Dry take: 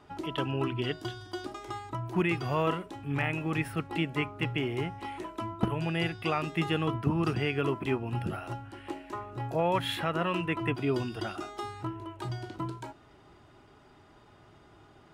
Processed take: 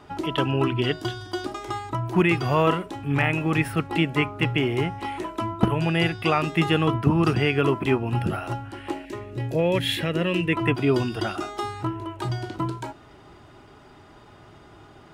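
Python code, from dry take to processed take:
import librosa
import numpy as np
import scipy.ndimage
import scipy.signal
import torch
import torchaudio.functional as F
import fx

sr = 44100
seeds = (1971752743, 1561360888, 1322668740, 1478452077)

y = fx.band_shelf(x, sr, hz=1000.0, db=-12.5, octaves=1.3, at=(9.05, 10.53))
y = y * librosa.db_to_amplitude(8.0)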